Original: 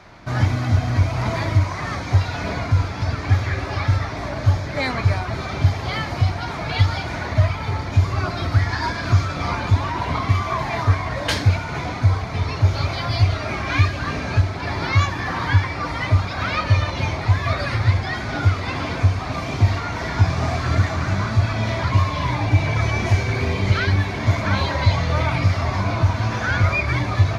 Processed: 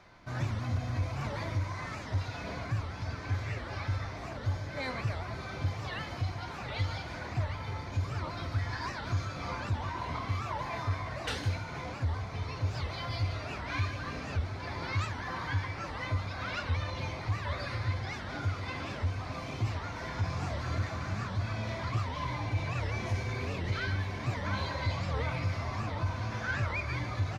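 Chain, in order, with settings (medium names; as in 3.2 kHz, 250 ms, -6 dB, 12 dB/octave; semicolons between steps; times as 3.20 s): reverse; upward compressor, threshold -33 dBFS; reverse; saturation -9 dBFS, distortion -18 dB; feedback comb 510 Hz, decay 0.47 s, mix 80%; delay 146 ms -11.5 dB; warped record 78 rpm, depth 250 cents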